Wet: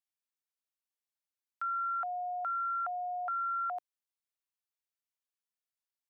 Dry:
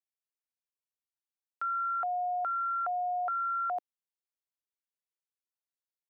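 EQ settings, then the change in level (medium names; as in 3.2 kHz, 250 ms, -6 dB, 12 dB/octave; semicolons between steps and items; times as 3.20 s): high-pass 740 Hz; -1.5 dB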